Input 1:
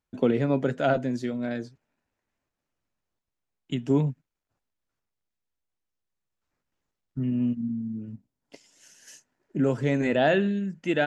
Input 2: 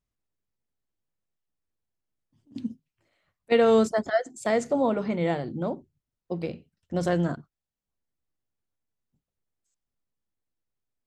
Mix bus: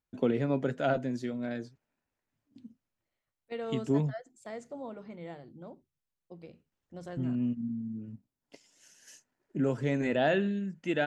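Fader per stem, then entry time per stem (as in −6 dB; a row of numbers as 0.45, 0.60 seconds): −5.0, −17.5 decibels; 0.00, 0.00 seconds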